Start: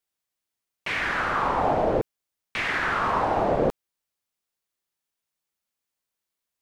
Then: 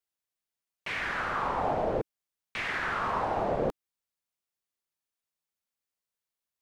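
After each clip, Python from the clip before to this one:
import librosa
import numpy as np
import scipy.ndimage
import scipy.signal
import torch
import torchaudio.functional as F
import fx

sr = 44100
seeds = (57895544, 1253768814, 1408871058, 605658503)

y = fx.peak_eq(x, sr, hz=300.0, db=-3.0, octaves=0.3)
y = y * 10.0 ** (-6.0 / 20.0)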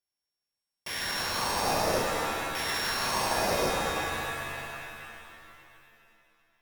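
y = np.r_[np.sort(x[:len(x) // 8 * 8].reshape(-1, 8), axis=1).ravel(), x[len(x) // 8 * 8:]]
y = fx.notch(y, sr, hz=1300.0, q=7.6)
y = fx.rev_shimmer(y, sr, seeds[0], rt60_s=2.7, semitones=7, shimmer_db=-2, drr_db=0.5)
y = y * 10.0 ** (-2.0 / 20.0)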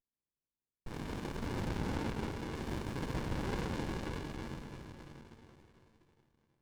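y = fx.bandpass_edges(x, sr, low_hz=660.0, high_hz=3800.0)
y = fx.running_max(y, sr, window=65)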